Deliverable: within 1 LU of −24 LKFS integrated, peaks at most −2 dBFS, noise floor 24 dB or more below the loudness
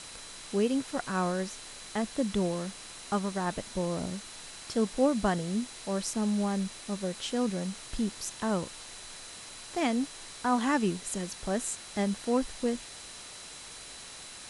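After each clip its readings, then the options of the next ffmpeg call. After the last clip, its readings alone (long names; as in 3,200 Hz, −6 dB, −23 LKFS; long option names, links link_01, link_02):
interfering tone 4,000 Hz; level of the tone −52 dBFS; background noise floor −46 dBFS; target noise floor −56 dBFS; integrated loudness −31.5 LKFS; sample peak −14.0 dBFS; target loudness −24.0 LKFS
→ -af "bandreject=frequency=4000:width=30"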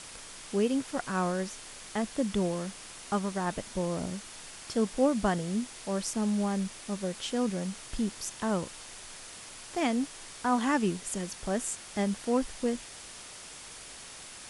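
interfering tone none found; background noise floor −47 dBFS; target noise floor −56 dBFS
→ -af "afftdn=noise_reduction=9:noise_floor=-47"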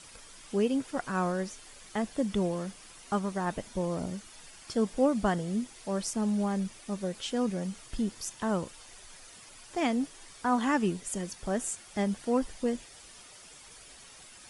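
background noise floor −52 dBFS; target noise floor −56 dBFS
→ -af "afftdn=noise_reduction=6:noise_floor=-52"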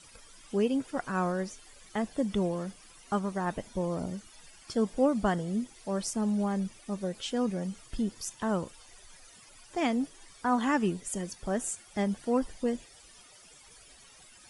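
background noise floor −55 dBFS; target noise floor −56 dBFS
→ -af "afftdn=noise_reduction=6:noise_floor=-55"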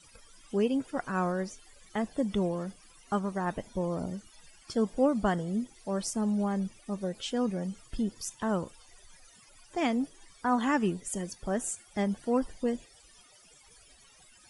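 background noise floor −58 dBFS; integrated loudness −32.0 LKFS; sample peak −14.0 dBFS; target loudness −24.0 LKFS
→ -af "volume=8dB"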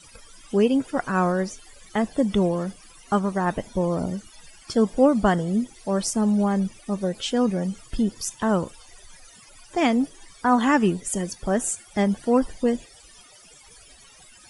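integrated loudness −24.0 LKFS; sample peak −6.0 dBFS; background noise floor −50 dBFS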